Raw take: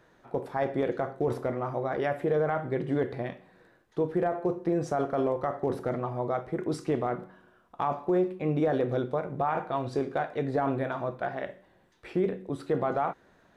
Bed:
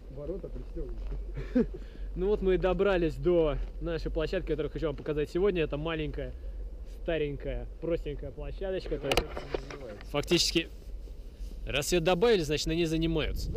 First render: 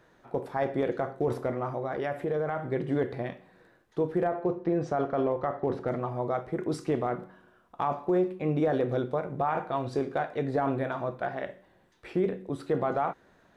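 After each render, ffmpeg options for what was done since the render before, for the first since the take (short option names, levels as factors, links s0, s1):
-filter_complex "[0:a]asettb=1/sr,asplit=3[s0][s1][s2];[s0]atrim=end=1.714[s3];[s1]atrim=start=1.71:end=2.72,asetpts=PTS-STARTPTS,afade=t=in:d=0.004:c=qsin,afade=t=out:st=1.006:d=0.004:c=qsin,acompressor=threshold=0.0282:ratio=1.5:attack=3.2:release=140:knee=1:detection=peak[s4];[s2]atrim=start=2.716[s5];[s3][s4]acrossfade=d=0.004:c1=hsin:c2=qsin[s6];[s6][s5]acrossfade=d=0.004:c1=qsin:c2=hsin,asettb=1/sr,asplit=3[s7][s8][s9];[s7]atrim=end=4.274[s10];[s8]atrim=start=4.27:end=5.88,asetpts=PTS-STARTPTS,afade=t=in:d=0.004:c=qsin,afade=t=out:st=1.606:d=0.004:c=qsin,lowpass=4400[s11];[s9]atrim=start=5.876[s12];[s10][s11]acrossfade=d=0.004:c1=hsin:c2=qsin[s13];[s13][s12]acrossfade=d=0.004:c1=qsin:c2=hsin"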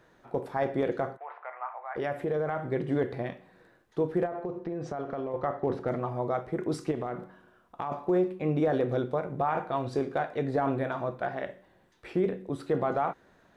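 -filter_complex "[0:a]asplit=3[s0][s1][s2];[s0]afade=t=out:st=1.16:d=0.02[s3];[s1]asuperpass=centerf=1400:order=8:qfactor=0.75,afade=t=in:st=1.16:d=0.02,afade=t=out:st=1.95:d=0.02[s4];[s2]afade=t=in:st=1.95:d=0.02[s5];[s3][s4][s5]amix=inputs=3:normalize=0,asettb=1/sr,asplit=3[s6][s7][s8];[s6]atrim=end=4.254[s9];[s7]atrim=start=4.25:end=5.34,asetpts=PTS-STARTPTS,afade=t=in:d=0.004:c=qsin,afade=t=out:st=1.086:d=0.004:c=qsin,acompressor=threshold=0.0316:ratio=6:attack=3.2:release=140:knee=1:detection=peak[s10];[s8]atrim=start=5.336[s11];[s9][s10]acrossfade=d=0.004:c1=hsin:c2=qsin[s12];[s12][s11]acrossfade=d=0.004:c1=qsin:c2=hsin,asettb=1/sr,asplit=3[s13][s14][s15];[s13]atrim=end=6.914[s16];[s14]atrim=start=6.91:end=7.92,asetpts=PTS-STARTPTS,afade=t=in:d=0.004:c=qsin,afade=t=out:st=1.006:d=0.004:c=qsin,acompressor=threshold=0.0355:ratio=4:attack=3.2:release=140:knee=1:detection=peak[s17];[s15]atrim=start=7.916[s18];[s16][s17]acrossfade=d=0.004:c1=hsin:c2=qsin[s19];[s19][s18]acrossfade=d=0.004:c1=qsin:c2=hsin"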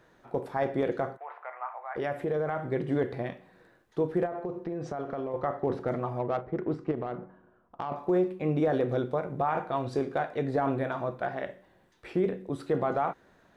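-filter_complex "[0:a]asettb=1/sr,asplit=3[s0][s1][s2];[s0]atrim=end=6.194[s3];[s1]atrim=start=6.19:end=7.96,asetpts=PTS-STARTPTS,afade=t=in:d=0.004:c=qsin,afade=t=out:st=1.766:d=0.004:c=qsin,adynamicsmooth=sensitivity=2.5:basefreq=1400[s4];[s2]atrim=start=7.956[s5];[s3][s4]acrossfade=d=0.004:c1=hsin:c2=qsin[s6];[s6][s5]acrossfade=d=0.004:c1=qsin:c2=hsin"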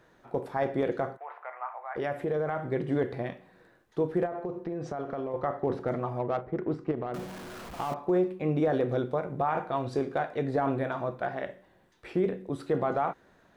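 -filter_complex "[0:a]asettb=1/sr,asplit=3[s0][s1][s2];[s0]atrim=end=7.144[s3];[s1]atrim=start=7.14:end=7.94,asetpts=PTS-STARTPTS,afade=t=in:d=0.004:c=qsin,afade=t=out:st=0.796:d=0.004:c=qsin,aeval=exprs='val(0)+0.5*0.0141*sgn(val(0))':c=same[s4];[s2]atrim=start=7.936[s5];[s3][s4]acrossfade=d=0.004:c1=hsin:c2=qsin[s6];[s6][s5]acrossfade=d=0.004:c1=qsin:c2=hsin"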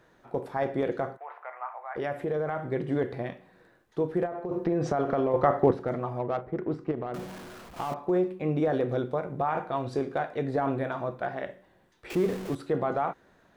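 -filter_complex "[0:a]asettb=1/sr,asplit=3[s0][s1][s2];[s0]atrim=end=12.104[s3];[s1]atrim=start=12.1:end=12.55,asetpts=PTS-STARTPTS,afade=t=in:d=0.004:c=qsin,afade=t=out:st=0.446:d=0.004:c=qsin,aeval=exprs='val(0)+0.5*0.0188*sgn(val(0))':c=same[s4];[s2]atrim=start=12.546[s5];[s3][s4]acrossfade=d=0.004:c1=hsin:c2=qsin[s6];[s6][s5]acrossfade=d=0.004:c1=qsin:c2=hsin,asplit=4[s7][s8][s9][s10];[s7]atrim=end=4.512[s11];[s8]atrim=start=4.508:end=5.712,asetpts=PTS-STARTPTS,volume=2.51[s12];[s9]atrim=start=5.708:end=7.76,asetpts=PTS-STARTPTS,afade=t=out:st=1.622:d=0.43:silence=0.473151[s13];[s10]atrim=start=7.76,asetpts=PTS-STARTPTS,afade=t=in:d=0.004:c=hsin:silence=0.473151[s14];[s11][s12]acrossfade=d=0.004:c1=hsin:c2=hsin[s15];[s13][s14]concat=n=2:v=0:a=1[s16];[s15][s16]acrossfade=d=0.004:c1=hsin:c2=hsin"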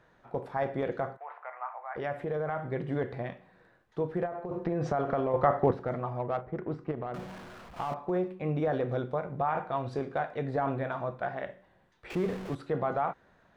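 -af "lowpass=f=3000:p=1,equalizer=f=330:w=1.3:g=-6"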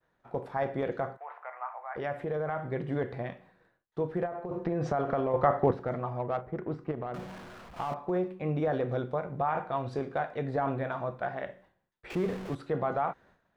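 -af "agate=range=0.0224:threshold=0.00178:ratio=3:detection=peak"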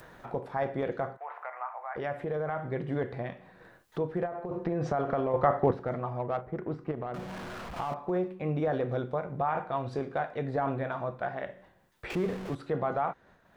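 -af "acompressor=mode=upward:threshold=0.0224:ratio=2.5"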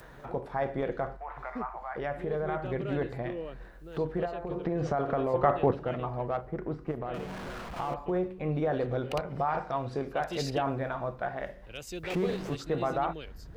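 -filter_complex "[1:a]volume=0.237[s0];[0:a][s0]amix=inputs=2:normalize=0"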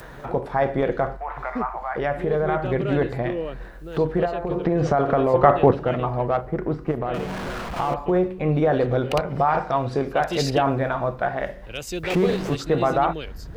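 -af "volume=2.99"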